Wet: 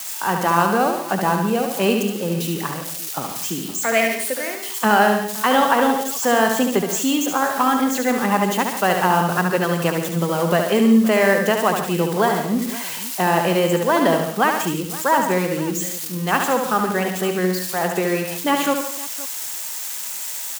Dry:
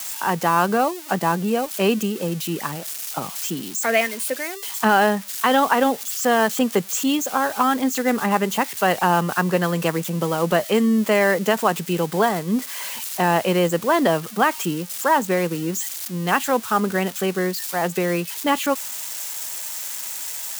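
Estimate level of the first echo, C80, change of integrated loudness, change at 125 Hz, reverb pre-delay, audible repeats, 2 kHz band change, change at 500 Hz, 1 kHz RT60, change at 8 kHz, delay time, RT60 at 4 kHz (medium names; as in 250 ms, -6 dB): -5.5 dB, no reverb, +1.5 dB, +1.5 dB, no reverb, 5, +1.5 dB, +1.5 dB, no reverb, +1.5 dB, 71 ms, no reverb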